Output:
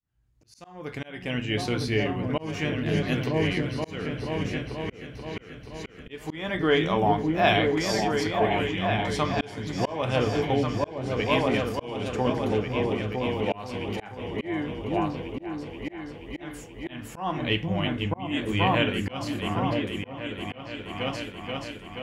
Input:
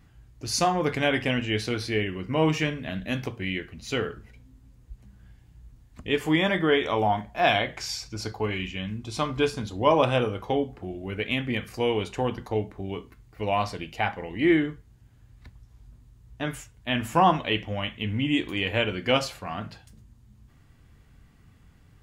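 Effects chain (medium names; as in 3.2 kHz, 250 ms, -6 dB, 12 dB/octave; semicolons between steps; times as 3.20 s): fade-in on the opening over 1.73 s; delay with an opening low-pass 480 ms, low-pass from 200 Hz, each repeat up 2 oct, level 0 dB; slow attack 373 ms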